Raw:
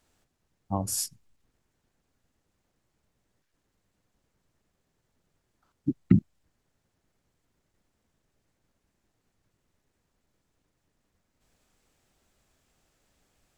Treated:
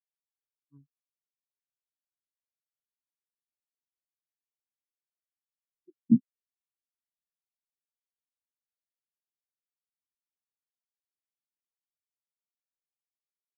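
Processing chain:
pitch glide at a constant tempo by +6.5 semitones ending unshifted
rotating-speaker cabinet horn 5 Hz
every bin expanded away from the loudest bin 4 to 1

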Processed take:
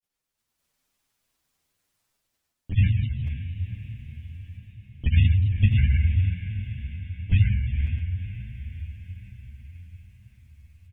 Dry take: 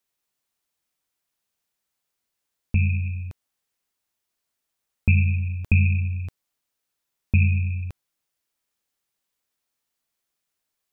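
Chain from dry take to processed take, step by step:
low-shelf EQ 160 Hz +9.5 dB
in parallel at −1 dB: brickwall limiter −9 dBFS, peak gain reduction 6.5 dB
on the sum: automatic gain control gain up to 10 dB
granular cloud 100 ms, grains 20 per second, pitch spread up and down by 3 semitones
pitch-shifted copies added −5 semitones −8 dB, +4 semitones −8 dB
on a send: feedback delay with all-pass diffusion 505 ms, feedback 60%, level −10 dB
on the sum: barber-pole flanger 8.1 ms +1.1 Hz
level −6.5 dB

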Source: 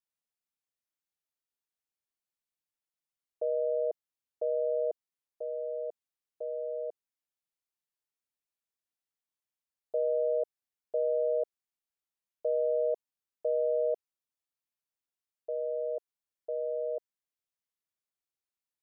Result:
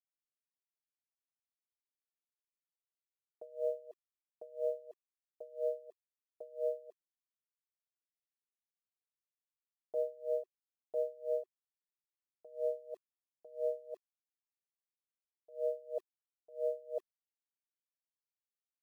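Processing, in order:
parametric band 550 Hz +3.5 dB 2.5 octaves
notch filter 370 Hz, Q 12
in parallel at −0.5 dB: speech leveller
on the sum: brickwall limiter −24.5 dBFS, peak gain reduction 11.5 dB
bit reduction 11 bits
tremolo with a sine in dB 3 Hz, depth 25 dB
level −1 dB

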